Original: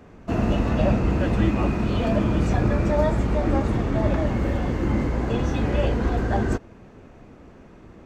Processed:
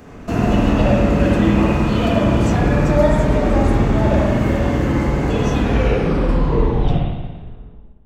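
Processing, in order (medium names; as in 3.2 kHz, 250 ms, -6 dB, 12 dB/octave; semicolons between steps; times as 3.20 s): tape stop on the ending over 2.53 s; in parallel at 0 dB: compression, threshold -31 dBFS, peak gain reduction 15.5 dB; on the sum: treble shelf 5.2 kHz +10.5 dB; spring tank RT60 1.3 s, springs 49/56 ms, chirp 70 ms, DRR -2.5 dB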